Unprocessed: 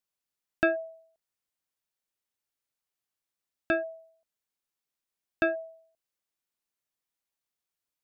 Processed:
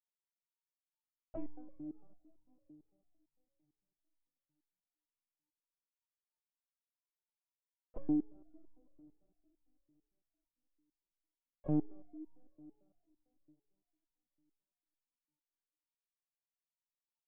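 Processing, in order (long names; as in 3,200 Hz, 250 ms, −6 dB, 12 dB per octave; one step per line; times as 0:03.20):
dynamic equaliser 810 Hz, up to −8 dB, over −52 dBFS, Q 7.1
leveller curve on the samples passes 2
envelope filter 470–2,000 Hz, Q 7.8, down, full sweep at −23.5 dBFS
change of speed 0.465×
linear-prediction vocoder at 8 kHz pitch kept
on a send at −16.5 dB: convolution reverb RT60 3.5 s, pre-delay 88 ms
on the sum: step-sequenced resonator 8.9 Hz 150–930 Hz
level +9 dB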